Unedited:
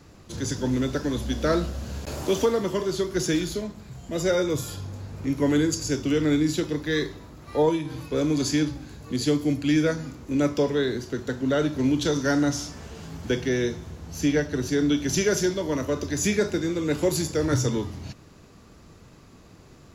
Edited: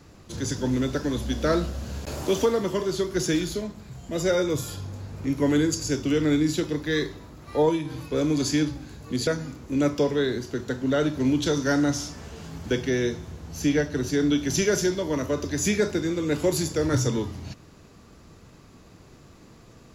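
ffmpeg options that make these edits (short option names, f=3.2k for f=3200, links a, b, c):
-filter_complex "[0:a]asplit=2[a][b];[a]atrim=end=9.272[c];[b]atrim=start=9.858[d];[c][d]acrossfade=d=0.004:c1=hsin:c2=hsin"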